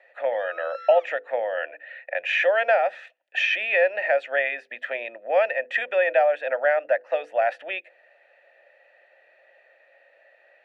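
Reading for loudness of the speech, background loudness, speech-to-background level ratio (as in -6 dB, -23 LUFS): -24.0 LUFS, -41.5 LUFS, 17.5 dB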